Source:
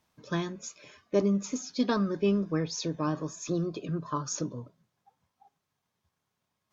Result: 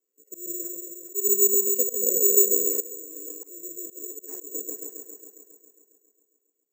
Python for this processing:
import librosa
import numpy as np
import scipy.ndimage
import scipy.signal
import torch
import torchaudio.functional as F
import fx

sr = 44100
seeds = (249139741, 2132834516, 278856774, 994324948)

y = fx.spec_box(x, sr, start_s=1.42, length_s=1.18, low_hz=490.0, high_hz=2000.0, gain_db=12)
y = fx.echo_opening(y, sr, ms=136, hz=400, octaves=2, feedback_pct=70, wet_db=0)
y = fx.over_compress(y, sr, threshold_db=-37.0, ratio=-1.0, at=(2.8, 4.29))
y = scipy.signal.sosfilt(scipy.signal.butter(4, 290.0, 'highpass', fs=sr, output='sos'), y)
y = fx.high_shelf(y, sr, hz=2000.0, db=-10.0)
y = fx.small_body(y, sr, hz=(420.0, 1000.0), ring_ms=30, db=18)
y = fx.auto_swell(y, sr, attack_ms=158.0)
y = fx.brickwall_bandstop(y, sr, low_hz=550.0, high_hz=4300.0)
y = fx.high_shelf(y, sr, hz=5400.0, db=3.5)
y = (np.kron(y[::6], np.eye(6)[0]) * 6)[:len(y)]
y = y * 10.0 ** (-14.5 / 20.0)